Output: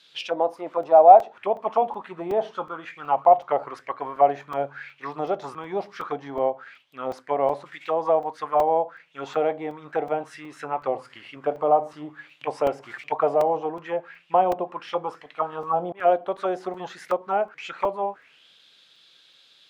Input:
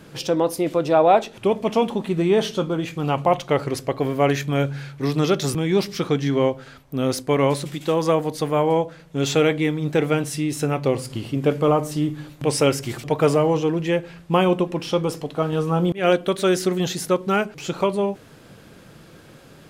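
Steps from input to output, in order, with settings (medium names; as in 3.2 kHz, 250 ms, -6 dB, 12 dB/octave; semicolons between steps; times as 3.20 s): auto-wah 720–4000 Hz, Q 5.1, down, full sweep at -16.5 dBFS; crackling interface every 0.37 s, samples 128, zero, from 0.83 s; trim +7.5 dB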